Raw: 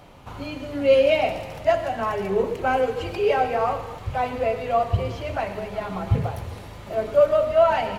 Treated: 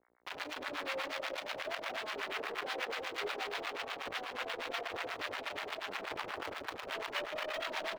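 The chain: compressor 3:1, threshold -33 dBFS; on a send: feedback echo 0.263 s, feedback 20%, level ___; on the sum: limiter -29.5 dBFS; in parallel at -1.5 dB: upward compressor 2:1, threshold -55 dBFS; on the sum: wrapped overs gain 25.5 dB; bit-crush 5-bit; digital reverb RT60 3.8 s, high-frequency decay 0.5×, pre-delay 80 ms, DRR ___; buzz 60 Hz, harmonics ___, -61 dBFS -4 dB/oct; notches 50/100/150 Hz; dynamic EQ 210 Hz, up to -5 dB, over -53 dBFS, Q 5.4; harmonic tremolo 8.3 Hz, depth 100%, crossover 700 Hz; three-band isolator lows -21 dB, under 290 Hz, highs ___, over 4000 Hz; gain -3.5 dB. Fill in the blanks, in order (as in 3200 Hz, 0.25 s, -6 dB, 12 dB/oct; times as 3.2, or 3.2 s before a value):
-6 dB, 8 dB, 37, -18 dB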